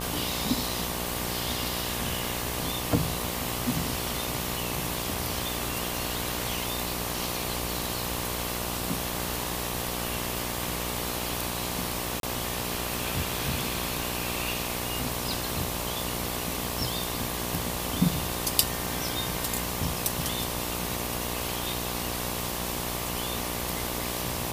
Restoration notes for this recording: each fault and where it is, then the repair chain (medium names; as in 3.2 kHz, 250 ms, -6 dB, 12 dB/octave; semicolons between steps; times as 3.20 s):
buzz 60 Hz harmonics 20 -35 dBFS
12.20–12.23 s: dropout 32 ms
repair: de-hum 60 Hz, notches 20; interpolate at 12.20 s, 32 ms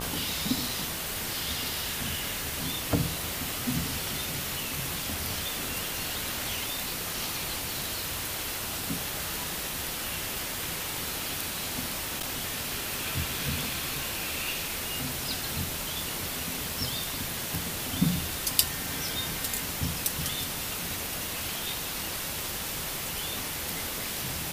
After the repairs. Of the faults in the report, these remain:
nothing left